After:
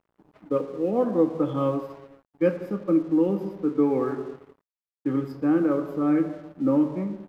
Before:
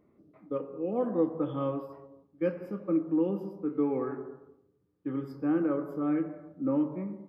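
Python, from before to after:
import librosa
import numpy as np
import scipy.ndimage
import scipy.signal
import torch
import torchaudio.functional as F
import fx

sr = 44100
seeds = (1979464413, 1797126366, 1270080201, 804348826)

p1 = fx.rider(x, sr, range_db=10, speed_s=0.5)
p2 = x + (p1 * 10.0 ** (2.0 / 20.0))
y = np.sign(p2) * np.maximum(np.abs(p2) - 10.0 ** (-51.5 / 20.0), 0.0)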